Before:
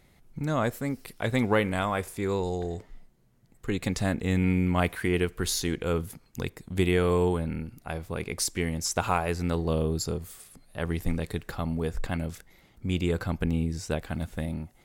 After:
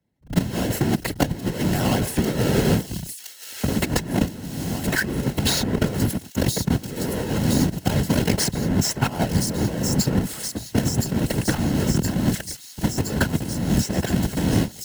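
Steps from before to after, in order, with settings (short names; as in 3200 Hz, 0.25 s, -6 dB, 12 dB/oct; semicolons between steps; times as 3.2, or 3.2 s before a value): half-waves squared off; gate -48 dBFS, range -53 dB; bell 130 Hz +10 dB 1.9 oct; negative-ratio compressor -22 dBFS, ratio -0.5; whisperiser; notch comb 1200 Hz; on a send: thin delay 1.018 s, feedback 65%, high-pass 4800 Hz, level -7.5 dB; on the sum: three-band squash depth 70%; gain +4 dB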